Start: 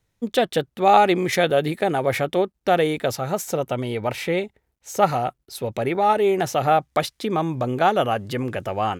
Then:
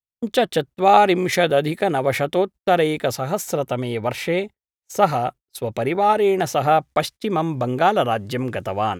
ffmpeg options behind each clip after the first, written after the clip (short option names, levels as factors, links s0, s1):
-af "agate=range=0.0178:threshold=0.0178:ratio=16:detection=peak,volume=1.19"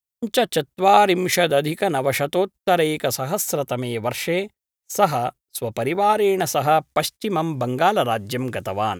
-af "highshelf=f=5400:g=10,volume=0.891"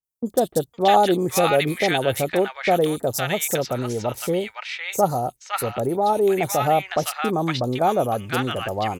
-filter_complex "[0:a]acrossover=split=1100|5000[s0][s1][s2];[s2]adelay=30[s3];[s1]adelay=510[s4];[s0][s4][s3]amix=inputs=3:normalize=0"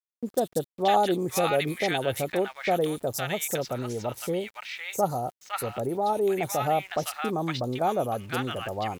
-af "aeval=exprs='val(0)*gte(abs(val(0)),0.00668)':c=same,volume=0.501"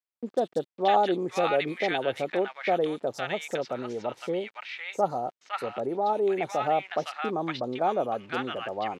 -af "highpass=230,lowpass=3600"